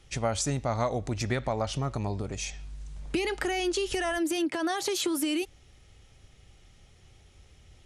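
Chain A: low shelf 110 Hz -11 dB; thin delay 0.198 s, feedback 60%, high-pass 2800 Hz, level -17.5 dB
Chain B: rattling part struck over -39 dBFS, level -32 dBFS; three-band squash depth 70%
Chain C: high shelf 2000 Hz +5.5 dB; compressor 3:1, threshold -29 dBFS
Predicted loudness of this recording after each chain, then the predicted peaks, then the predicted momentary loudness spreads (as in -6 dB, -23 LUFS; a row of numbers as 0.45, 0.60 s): -31.0, -30.0, -32.0 LUFS; -15.0, -13.5, -16.0 dBFS; 7, 14, 6 LU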